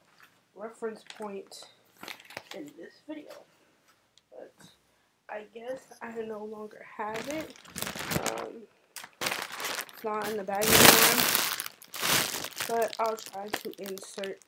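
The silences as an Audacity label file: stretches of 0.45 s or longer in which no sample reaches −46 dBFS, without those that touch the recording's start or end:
3.420000	4.180000	silence
4.660000	5.290000	silence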